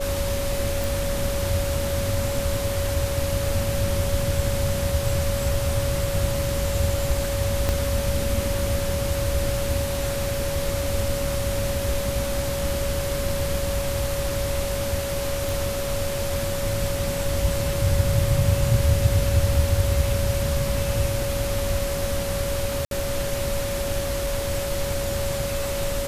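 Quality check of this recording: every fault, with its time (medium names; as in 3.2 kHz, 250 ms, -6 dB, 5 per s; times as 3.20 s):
whine 560 Hz -27 dBFS
0.84 s: pop
7.69 s: pop -8 dBFS
15.49 s: pop
22.85–22.91 s: dropout 62 ms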